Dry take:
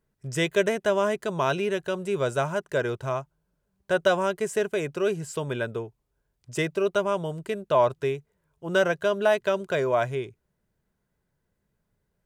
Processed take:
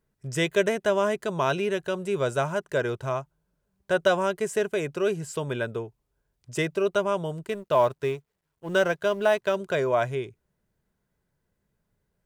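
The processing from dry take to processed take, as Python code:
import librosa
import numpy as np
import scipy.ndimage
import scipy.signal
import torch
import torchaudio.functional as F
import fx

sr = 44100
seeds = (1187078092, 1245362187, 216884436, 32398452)

y = fx.law_mismatch(x, sr, coded='A', at=(7.44, 9.56))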